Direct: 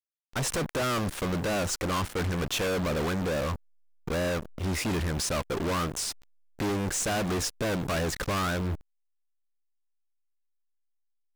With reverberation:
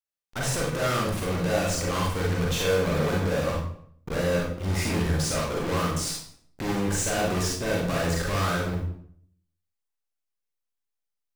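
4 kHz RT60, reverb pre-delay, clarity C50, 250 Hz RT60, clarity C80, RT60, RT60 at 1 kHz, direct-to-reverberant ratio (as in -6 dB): 0.50 s, 35 ms, 2.0 dB, 0.70 s, 6.0 dB, 0.60 s, 0.60 s, -3.0 dB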